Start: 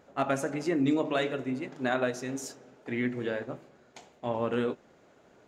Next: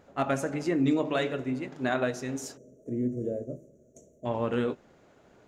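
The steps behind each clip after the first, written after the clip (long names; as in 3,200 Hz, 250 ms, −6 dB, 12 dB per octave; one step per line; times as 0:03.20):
gain on a spectral selection 0:02.57–0:04.26, 670–5,600 Hz −29 dB
low-shelf EQ 110 Hz +8.5 dB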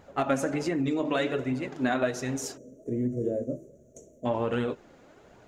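downward compressor, threshold −27 dBFS, peak gain reduction 7 dB
flanger 1.3 Hz, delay 0.9 ms, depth 3.3 ms, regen +50%
level +8.5 dB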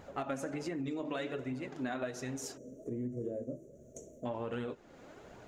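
downward compressor 2 to 1, threshold −46 dBFS, peak gain reduction 13.5 dB
level +1.5 dB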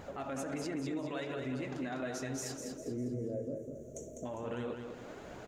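brickwall limiter −36 dBFS, peak gain reduction 11 dB
repeating echo 201 ms, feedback 40%, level −6 dB
level +4.5 dB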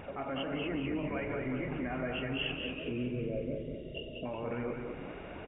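hearing-aid frequency compression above 2,100 Hz 4 to 1
echo with shifted repeats 183 ms, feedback 62%, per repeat −100 Hz, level −10 dB
level +2 dB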